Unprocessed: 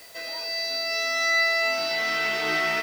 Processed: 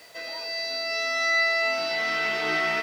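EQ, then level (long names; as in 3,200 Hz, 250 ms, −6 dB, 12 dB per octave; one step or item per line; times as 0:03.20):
high-pass filter 85 Hz 12 dB per octave
high-shelf EQ 8,000 Hz −11.5 dB
0.0 dB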